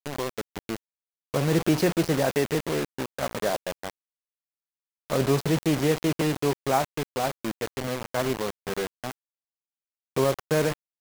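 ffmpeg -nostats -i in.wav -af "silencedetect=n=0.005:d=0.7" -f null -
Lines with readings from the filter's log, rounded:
silence_start: 3.90
silence_end: 5.10 | silence_duration: 1.20
silence_start: 9.12
silence_end: 10.16 | silence_duration: 1.05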